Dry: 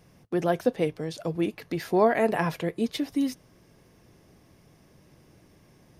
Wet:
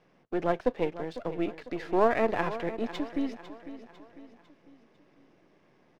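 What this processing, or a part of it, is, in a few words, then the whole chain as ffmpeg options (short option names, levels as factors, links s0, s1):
crystal radio: -af "highpass=250,lowpass=2900,aeval=exprs='if(lt(val(0),0),0.447*val(0),val(0))':c=same,aecho=1:1:500|1000|1500|2000:0.211|0.0972|0.0447|0.0206"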